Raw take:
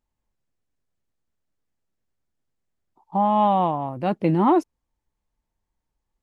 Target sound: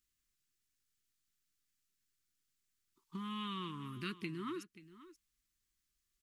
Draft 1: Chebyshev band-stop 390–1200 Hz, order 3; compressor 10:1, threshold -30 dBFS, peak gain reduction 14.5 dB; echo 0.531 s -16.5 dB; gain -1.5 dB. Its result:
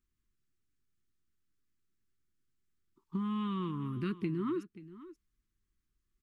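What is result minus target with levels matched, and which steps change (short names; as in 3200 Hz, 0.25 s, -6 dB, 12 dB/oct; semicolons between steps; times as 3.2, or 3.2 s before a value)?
2000 Hz band -9.5 dB
add after compressor: tilt shelf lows -9.5 dB, about 1500 Hz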